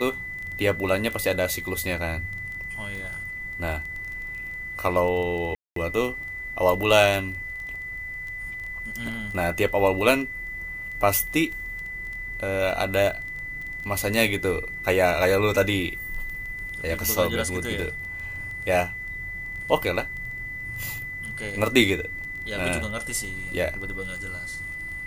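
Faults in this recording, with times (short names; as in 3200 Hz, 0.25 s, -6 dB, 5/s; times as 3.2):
crackle 12/s -31 dBFS
tone 2000 Hz -32 dBFS
5.55–5.76 gap 0.213 s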